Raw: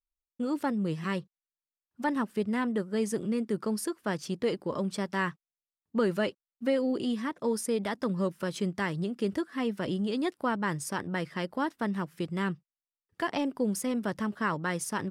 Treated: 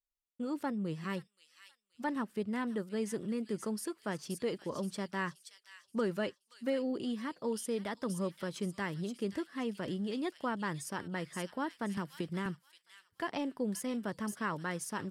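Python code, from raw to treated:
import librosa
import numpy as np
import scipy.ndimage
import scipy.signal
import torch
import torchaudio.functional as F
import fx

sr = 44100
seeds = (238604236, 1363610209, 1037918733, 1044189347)

y = fx.echo_wet_highpass(x, sr, ms=526, feedback_pct=38, hz=3400.0, wet_db=-4.5)
y = fx.band_squash(y, sr, depth_pct=100, at=(11.97, 12.46))
y = y * librosa.db_to_amplitude(-6.0)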